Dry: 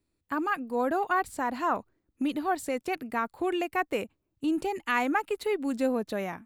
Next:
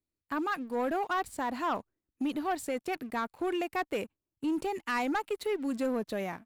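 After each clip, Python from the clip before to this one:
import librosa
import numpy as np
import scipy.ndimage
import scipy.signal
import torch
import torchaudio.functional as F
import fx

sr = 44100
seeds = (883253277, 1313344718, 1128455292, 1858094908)

y = fx.leveller(x, sr, passes=2)
y = y * librosa.db_to_amplitude(-9.0)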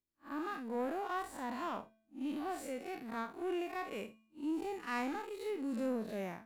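y = fx.spec_blur(x, sr, span_ms=116.0)
y = fx.comb_fb(y, sr, f0_hz=220.0, decay_s=0.66, harmonics='odd', damping=0.0, mix_pct=50)
y = y * librosa.db_to_amplitude(2.5)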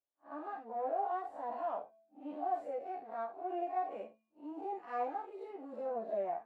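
y = fx.bandpass_q(x, sr, hz=680.0, q=4.9)
y = fx.chorus_voices(y, sr, voices=6, hz=0.34, base_ms=12, depth_ms=2.1, mix_pct=50)
y = y * librosa.db_to_amplitude(13.5)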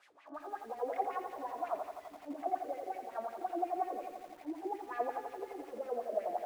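y = fx.delta_mod(x, sr, bps=64000, step_db=-53.5)
y = fx.wah_lfo(y, sr, hz=5.5, low_hz=290.0, high_hz=2400.0, q=2.9)
y = fx.echo_crushed(y, sr, ms=85, feedback_pct=80, bits=11, wet_db=-8.0)
y = y * librosa.db_to_amplitude(7.0)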